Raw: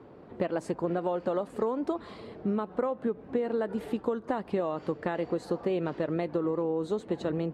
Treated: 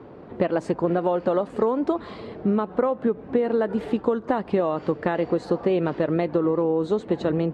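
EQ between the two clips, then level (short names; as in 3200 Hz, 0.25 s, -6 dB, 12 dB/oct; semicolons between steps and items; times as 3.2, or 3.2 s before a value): air absorption 73 m; +7.5 dB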